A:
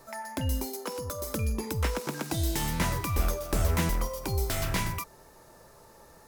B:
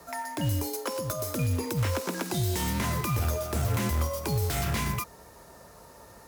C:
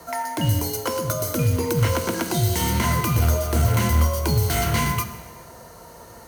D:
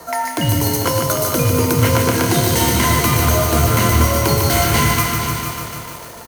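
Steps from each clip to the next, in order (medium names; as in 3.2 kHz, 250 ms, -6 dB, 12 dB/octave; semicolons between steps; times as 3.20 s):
peak limiter -23 dBFS, peak gain reduction 9 dB; frequency shift +34 Hz; short-mantissa float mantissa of 2-bit; trim +3.5 dB
rippled EQ curve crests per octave 1.9, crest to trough 7 dB; plate-style reverb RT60 1.4 s, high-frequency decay 0.95×, DRR 9 dB; trim +6 dB
tone controls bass -4 dB, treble 0 dB; feedback delay 475 ms, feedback 25%, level -9.5 dB; bit-crushed delay 149 ms, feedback 80%, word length 7-bit, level -5 dB; trim +6.5 dB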